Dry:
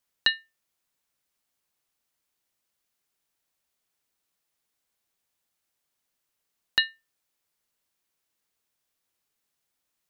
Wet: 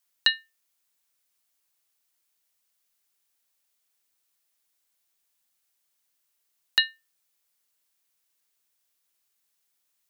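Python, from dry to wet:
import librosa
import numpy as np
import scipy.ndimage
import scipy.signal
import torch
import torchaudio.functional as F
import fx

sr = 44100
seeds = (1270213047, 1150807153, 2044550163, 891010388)

y = fx.tilt_eq(x, sr, slope=2.0)
y = y * librosa.db_to_amplitude(-1.5)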